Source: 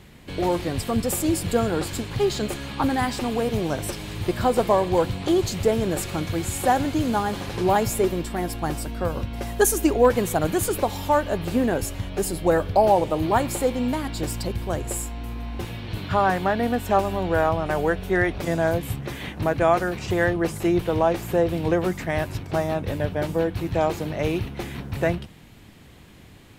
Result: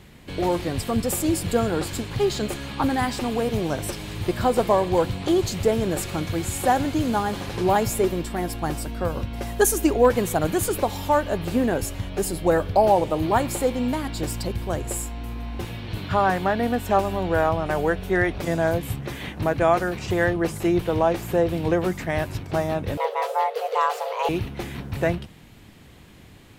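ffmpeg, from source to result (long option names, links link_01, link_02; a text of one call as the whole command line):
ffmpeg -i in.wav -filter_complex "[0:a]asettb=1/sr,asplit=3[link_01][link_02][link_03];[link_01]atrim=end=22.974[link_04];[link_02]atrim=start=22.97:end=24.29,asetpts=PTS-STARTPTS,afade=type=in:duration=0.004:curve=qsin,afade=type=out:start_time=1.316:duration=0.004:curve=qsin,afreqshift=380[link_05];[link_03]atrim=start=24.286[link_06];[link_04][link_05]acrossfade=duration=0.004:curve1=hsin:curve2=qsin[link_07];[link_07][link_06]acrossfade=duration=0.004:curve1=qsin:curve2=hsin" out.wav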